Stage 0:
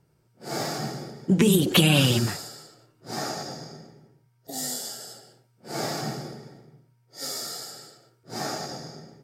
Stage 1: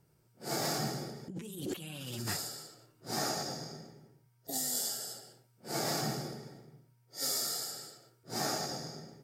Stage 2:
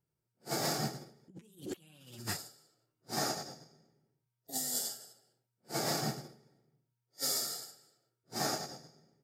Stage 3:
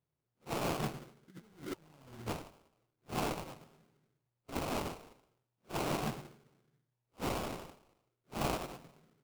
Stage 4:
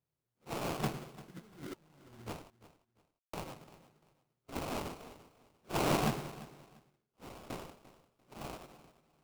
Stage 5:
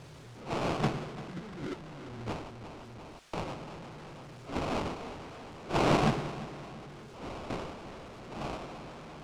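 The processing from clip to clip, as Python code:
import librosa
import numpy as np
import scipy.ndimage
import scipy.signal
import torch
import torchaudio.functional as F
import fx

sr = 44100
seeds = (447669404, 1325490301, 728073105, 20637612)

y1 = fx.high_shelf(x, sr, hz=7700.0, db=8.5)
y1 = fx.over_compress(y1, sr, threshold_db=-29.0, ratio=-1.0)
y1 = F.gain(torch.from_numpy(y1), -7.5).numpy()
y2 = fx.upward_expand(y1, sr, threshold_db=-45.0, expansion=2.5)
y2 = F.gain(torch.from_numpy(y2), 1.5).numpy()
y3 = fx.rider(y2, sr, range_db=10, speed_s=0.5)
y3 = fx.sample_hold(y3, sr, seeds[0], rate_hz=1800.0, jitter_pct=20)
y3 = F.gain(torch.from_numpy(y3), 1.5).numpy()
y4 = fx.tremolo_random(y3, sr, seeds[1], hz=1.2, depth_pct=100)
y4 = fx.echo_feedback(y4, sr, ms=345, feedback_pct=25, wet_db=-17.5)
y4 = F.gain(torch.from_numpy(y4), 5.0).numpy()
y5 = y4 + 0.5 * 10.0 ** (-45.5 / 20.0) * np.sign(y4)
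y5 = fx.air_absorb(y5, sr, metres=91.0)
y5 = F.gain(torch.from_numpy(y5), 5.0).numpy()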